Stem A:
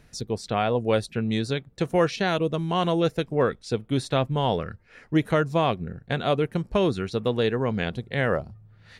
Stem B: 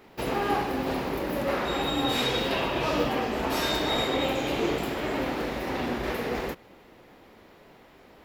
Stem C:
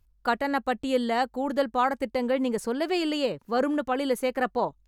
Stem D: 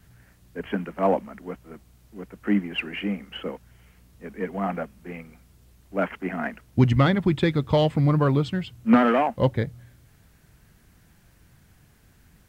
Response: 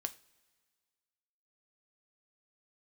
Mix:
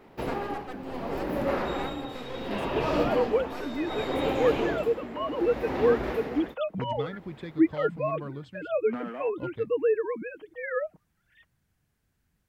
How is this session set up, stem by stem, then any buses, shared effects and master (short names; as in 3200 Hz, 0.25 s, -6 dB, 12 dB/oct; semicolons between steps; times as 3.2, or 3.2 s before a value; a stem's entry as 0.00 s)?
-6.0 dB, 2.45 s, no send, sine-wave speech; comb 6.4 ms, depth 55%
+1.0 dB, 0.00 s, no send, high shelf 2300 Hz -10 dB; tremolo 0.68 Hz, depth 77%
-11.5 dB, 0.00 s, no send, half-wave rectifier
-18.0 dB, 0.00 s, no send, dry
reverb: off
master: dry